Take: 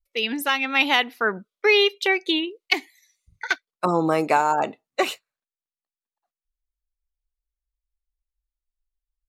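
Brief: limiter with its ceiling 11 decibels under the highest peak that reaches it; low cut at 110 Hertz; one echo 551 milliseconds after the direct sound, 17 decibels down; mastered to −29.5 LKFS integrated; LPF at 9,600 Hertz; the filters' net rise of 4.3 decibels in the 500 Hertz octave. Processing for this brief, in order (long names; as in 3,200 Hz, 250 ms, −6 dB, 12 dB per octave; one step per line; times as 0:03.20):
high-pass filter 110 Hz
low-pass filter 9,600 Hz
parametric band 500 Hz +5.5 dB
brickwall limiter −13.5 dBFS
single-tap delay 551 ms −17 dB
level −4 dB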